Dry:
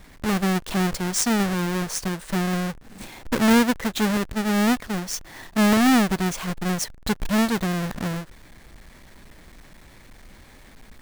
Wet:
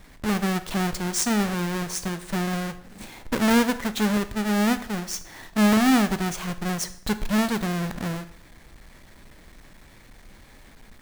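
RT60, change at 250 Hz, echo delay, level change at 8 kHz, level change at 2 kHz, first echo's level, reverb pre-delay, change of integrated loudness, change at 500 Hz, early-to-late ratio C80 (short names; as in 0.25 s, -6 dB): 0.60 s, -1.5 dB, none, -1.5 dB, -1.5 dB, none, 5 ms, -1.5 dB, -1.5 dB, 17.5 dB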